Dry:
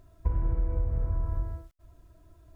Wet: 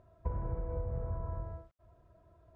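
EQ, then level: band-pass 400 Hz, Q 0.79; bell 300 Hz -14.5 dB 0.79 oct; +6.0 dB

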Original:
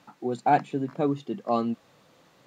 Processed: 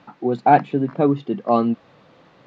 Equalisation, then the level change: air absorption 210 m; +8.5 dB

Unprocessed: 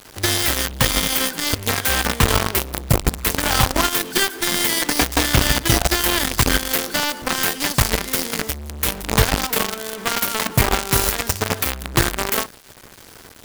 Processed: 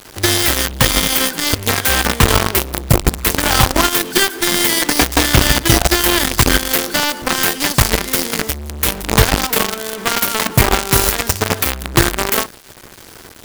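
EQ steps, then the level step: bell 350 Hz +3 dB 0.21 oct; +4.5 dB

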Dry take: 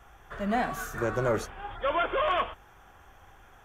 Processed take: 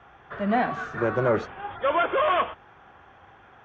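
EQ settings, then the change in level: BPF 110–4000 Hz; air absorption 130 m; +5.0 dB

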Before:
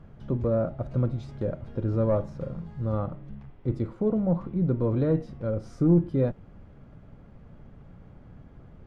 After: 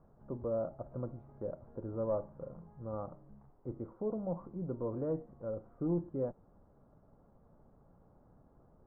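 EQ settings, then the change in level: LPF 1100 Hz 24 dB/oct; bell 110 Hz -2.5 dB 1.5 oct; low shelf 360 Hz -11.5 dB; -4.5 dB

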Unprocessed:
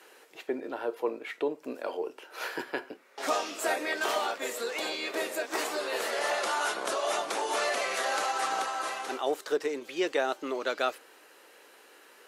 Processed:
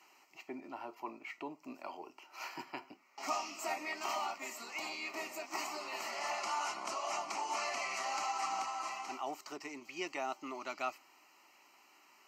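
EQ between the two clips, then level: fixed phaser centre 2400 Hz, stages 8; -4.0 dB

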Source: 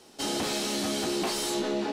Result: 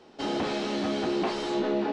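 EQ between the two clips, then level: air absorption 69 m; tape spacing loss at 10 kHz 20 dB; low shelf 200 Hz -4.5 dB; +4.5 dB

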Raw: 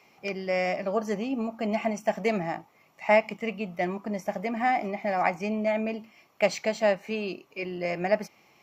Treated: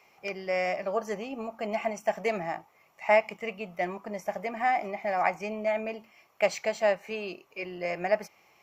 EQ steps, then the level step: graphic EQ 125/250/4000 Hz -5/-9/-4 dB; 0.0 dB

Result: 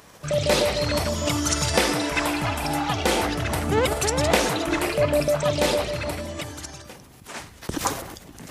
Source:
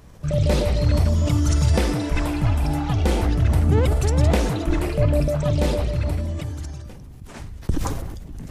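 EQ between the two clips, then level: HPF 830 Hz 6 dB/oct; +8.0 dB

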